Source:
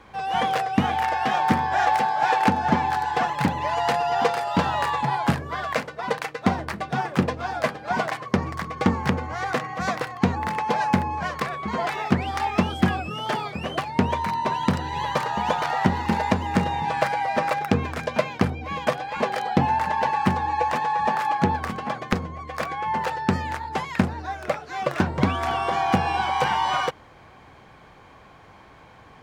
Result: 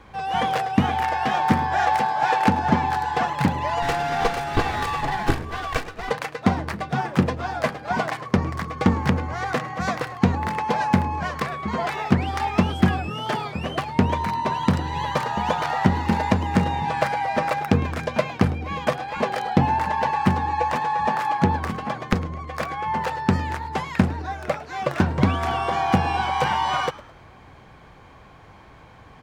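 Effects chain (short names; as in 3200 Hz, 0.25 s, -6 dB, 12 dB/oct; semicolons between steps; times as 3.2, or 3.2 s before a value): 3.82–6.11 minimum comb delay 2.6 ms; low shelf 140 Hz +7 dB; frequency-shifting echo 0.106 s, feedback 39%, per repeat +87 Hz, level -19 dB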